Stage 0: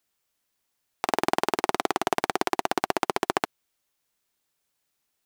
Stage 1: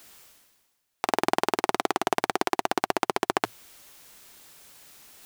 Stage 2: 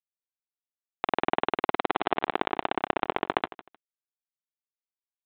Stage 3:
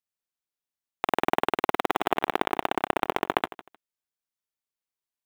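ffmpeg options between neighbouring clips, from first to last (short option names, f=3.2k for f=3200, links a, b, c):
-af "equalizer=f=110:t=o:w=0.22:g=-2.5,areverse,acompressor=mode=upward:threshold=-30dB:ratio=2.5,areverse"
-af "aresample=8000,aeval=exprs='sgn(val(0))*max(abs(val(0))-0.0251,0)':c=same,aresample=44100,aecho=1:1:154|308:0.133|0.028"
-af "acrusher=bits=5:mode=log:mix=0:aa=0.000001,volume=1.5dB"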